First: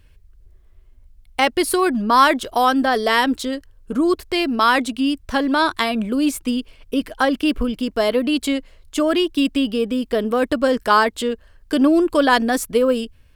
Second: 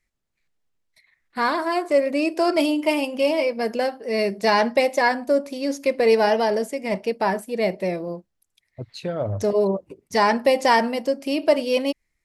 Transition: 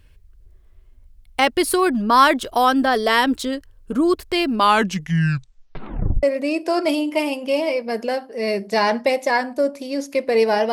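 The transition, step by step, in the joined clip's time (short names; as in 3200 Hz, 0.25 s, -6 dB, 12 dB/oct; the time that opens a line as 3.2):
first
4.48 tape stop 1.75 s
6.23 switch to second from 1.94 s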